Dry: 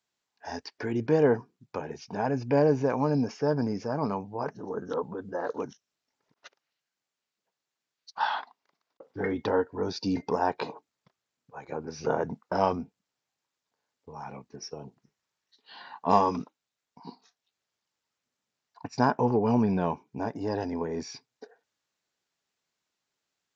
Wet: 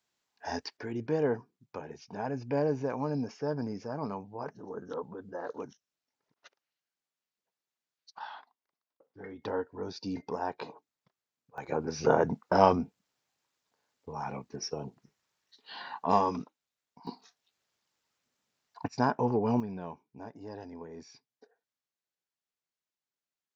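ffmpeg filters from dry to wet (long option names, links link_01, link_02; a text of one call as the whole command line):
ffmpeg -i in.wav -af "asetnsamples=nb_out_samples=441:pad=0,asendcmd='0.77 volume volume -6.5dB;8.19 volume volume -15dB;9.42 volume volume -7.5dB;11.58 volume volume 3.5dB;16.06 volume volume -3.5dB;17.07 volume volume 3.5dB;18.88 volume volume -3.5dB;19.6 volume volume -13dB',volume=1.5dB" out.wav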